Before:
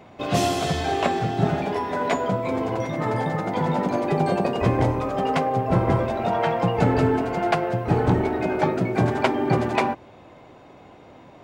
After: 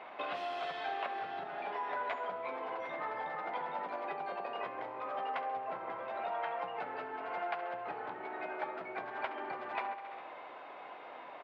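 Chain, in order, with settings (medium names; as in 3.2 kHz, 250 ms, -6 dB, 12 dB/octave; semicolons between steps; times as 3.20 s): on a send: feedback delay 67 ms, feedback 60%, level -15 dB; on the sum: compression 16:1, threshold -33 dBFS, peak gain reduction 19.5 dB; high-pass 900 Hz 12 dB/octave; peaking EQ 6.1 kHz -2 dB; in parallel at -6.5 dB: saturation -37 dBFS, distortion -16 dB; on the sum: distance through air 380 m; trim +4 dB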